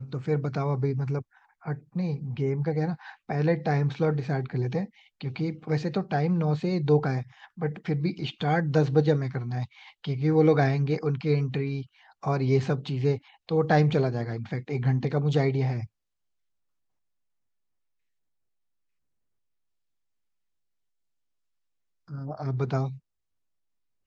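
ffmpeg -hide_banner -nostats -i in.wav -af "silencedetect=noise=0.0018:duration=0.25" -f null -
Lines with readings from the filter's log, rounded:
silence_start: 15.87
silence_end: 22.08 | silence_duration: 6.21
silence_start: 22.99
silence_end: 24.07 | silence_duration: 1.07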